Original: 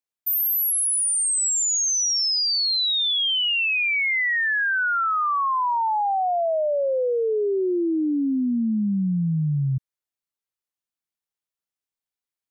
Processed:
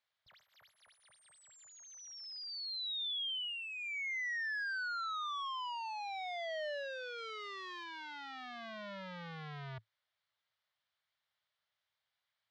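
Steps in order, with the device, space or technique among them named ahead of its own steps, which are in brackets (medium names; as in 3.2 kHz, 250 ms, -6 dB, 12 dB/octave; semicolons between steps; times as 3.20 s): scooped metal amplifier (valve stage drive 49 dB, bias 0.3; cabinet simulation 110–3500 Hz, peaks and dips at 110 Hz +6 dB, 600 Hz +7 dB, 2.6 kHz -9 dB; amplifier tone stack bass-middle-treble 10-0-10); 7.18–7.84 s: treble shelf 8.3 kHz +9.5 dB; trim +18 dB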